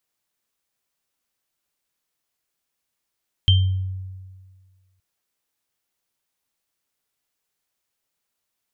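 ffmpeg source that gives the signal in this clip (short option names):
-f lavfi -i "aevalsrc='0.282*pow(10,-3*t/1.7)*sin(2*PI*94.1*t)+0.2*pow(10,-3*t/0.39)*sin(2*PI*3140*t)':d=1.52:s=44100"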